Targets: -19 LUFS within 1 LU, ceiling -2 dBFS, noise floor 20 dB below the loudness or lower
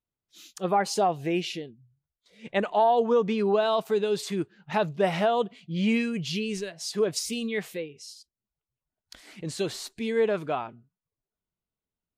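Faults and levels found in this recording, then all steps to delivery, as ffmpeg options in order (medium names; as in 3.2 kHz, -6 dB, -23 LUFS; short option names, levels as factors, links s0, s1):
loudness -27.0 LUFS; peak level -13.5 dBFS; loudness target -19.0 LUFS
-> -af "volume=2.51"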